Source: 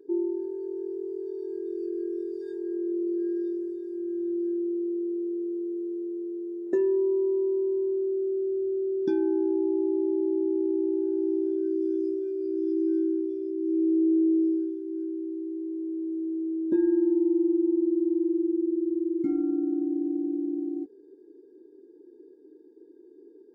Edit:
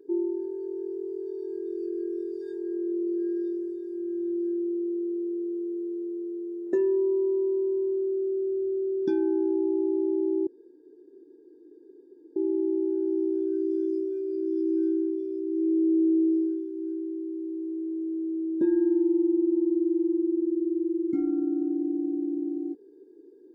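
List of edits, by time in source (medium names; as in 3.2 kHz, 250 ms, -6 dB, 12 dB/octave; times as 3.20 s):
10.47 s: insert room tone 1.89 s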